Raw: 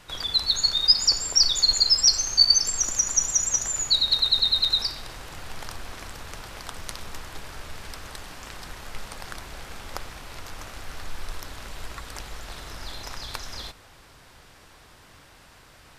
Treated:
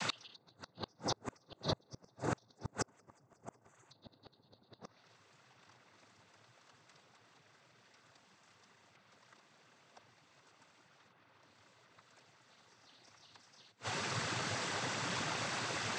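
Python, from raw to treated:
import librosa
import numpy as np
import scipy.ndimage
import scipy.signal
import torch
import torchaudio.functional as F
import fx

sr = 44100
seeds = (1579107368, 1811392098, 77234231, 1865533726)

y = fx.env_lowpass_down(x, sr, base_hz=630.0, full_db=-20.0)
y = fx.noise_vocoder(y, sr, seeds[0], bands=16)
y = fx.gate_flip(y, sr, shuts_db=-37.0, range_db=-38)
y = y * librosa.db_to_amplitude(15.0)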